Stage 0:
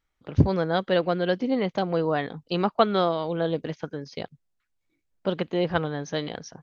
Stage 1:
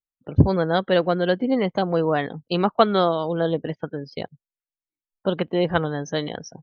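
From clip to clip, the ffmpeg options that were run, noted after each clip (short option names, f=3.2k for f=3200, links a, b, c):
-af "afftdn=nr=29:nf=-44,volume=3.5dB"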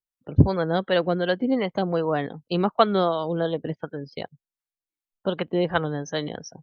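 -filter_complex "[0:a]acrossover=split=540[a][b];[a]aeval=exprs='val(0)*(1-0.5/2+0.5/2*cos(2*PI*2.7*n/s))':c=same[c];[b]aeval=exprs='val(0)*(1-0.5/2-0.5/2*cos(2*PI*2.7*n/s))':c=same[d];[c][d]amix=inputs=2:normalize=0"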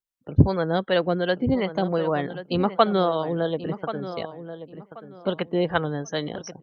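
-filter_complex "[0:a]asplit=2[a][b];[b]adelay=1083,lowpass=f=2.5k:p=1,volume=-12dB,asplit=2[c][d];[d]adelay=1083,lowpass=f=2.5k:p=1,volume=0.26,asplit=2[e][f];[f]adelay=1083,lowpass=f=2.5k:p=1,volume=0.26[g];[a][c][e][g]amix=inputs=4:normalize=0"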